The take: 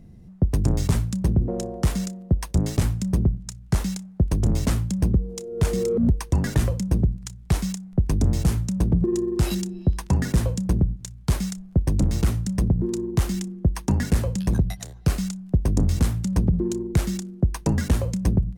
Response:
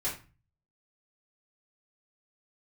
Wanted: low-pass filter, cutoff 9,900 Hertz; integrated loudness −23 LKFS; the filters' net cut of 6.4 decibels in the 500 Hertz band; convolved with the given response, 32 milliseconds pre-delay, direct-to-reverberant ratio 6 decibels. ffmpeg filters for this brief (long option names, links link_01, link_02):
-filter_complex "[0:a]lowpass=9900,equalizer=frequency=500:width_type=o:gain=-9,asplit=2[link_01][link_02];[1:a]atrim=start_sample=2205,adelay=32[link_03];[link_02][link_03]afir=irnorm=-1:irlink=0,volume=-11dB[link_04];[link_01][link_04]amix=inputs=2:normalize=0"